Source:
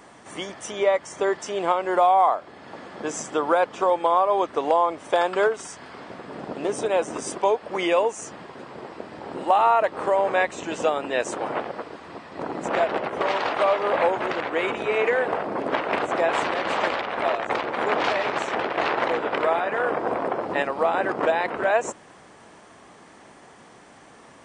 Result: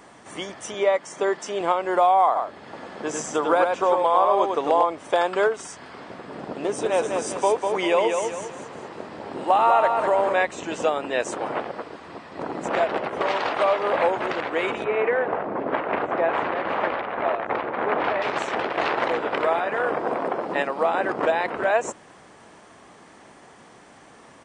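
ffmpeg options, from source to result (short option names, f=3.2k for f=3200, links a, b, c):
-filter_complex "[0:a]asettb=1/sr,asplit=3[a][b][c];[a]atrim=end=0.744[d];[b]atrim=start=0.74:end=1.61,asetpts=PTS-STARTPTS,afade=t=in:d=0.004:c=qsin,afade=t=out:st=0.866:d=0.004:c=qsin,highpass=f=140:w=0.5412,highpass=f=140:w=1.3066[e];[c]atrim=start=1.606[f];[d][e]acrossfade=d=0.004:c1=hsin:c2=qsin[g];[g][f]acrossfade=d=0.004:c1=qsin:c2=hsin,asplit=3[h][i][j];[h]afade=t=out:st=2.35:d=0.02[k];[i]aecho=1:1:99:0.631,afade=t=in:st=2.35:d=0.02,afade=t=out:st=4.83:d=0.02[l];[j]afade=t=in:st=4.83:d=0.02[m];[k][l][m]amix=inputs=3:normalize=0,asettb=1/sr,asplit=3[n][o][p];[n]atrim=end=6.614[q];[o]atrim=start=6.61:end=10.33,asetpts=PTS-STARTPTS,afade=t=in:d=0.004:c=qsin,afade=t=out:st=3.716:d=0.004:c=qsin,aecho=1:1:198|396|594|792|990:0.562|0.214|0.0812|0.0309|0.0117,atrim=end_sample=164052[r];[p]atrim=start=10.326[s];[q][r]acrossfade=d=0.004:c1=hsin:c2=qsin[t];[t][s]acrossfade=d=0.004:c1=qsin:c2=hsin,asettb=1/sr,asplit=3[u][v][w];[u]atrim=end=14.844[x];[v]atrim=start=14.84:end=18.22,asetpts=PTS-STARTPTS,afade=t=in:d=0.004:c=qsin,afade=t=out:st=3.376:d=0.004:c=qsin,lowpass=2.1k[y];[w]atrim=start=18.216[z];[x][y]acrossfade=d=0.004:c1=hsin:c2=qsin[aa];[aa][z]acrossfade=d=0.004:c1=qsin:c2=hsin,asettb=1/sr,asplit=3[ab][ac][ad];[ab]atrim=end=20.034[ae];[ac]atrim=start=20.03:end=21.09,asetpts=PTS-STARTPTS,afade=t=in:d=0.004:c=qsin,afade=t=out:st=1.056:d=0.004:c=qsin,highpass=f=130:w=0.5412,highpass=f=130:w=1.3066[af];[ad]atrim=start=21.086[ag];[ae][af]acrossfade=d=0.004:c1=hsin:c2=qsin[ah];[ah][ag]acrossfade=d=0.004:c1=qsin:c2=hsin"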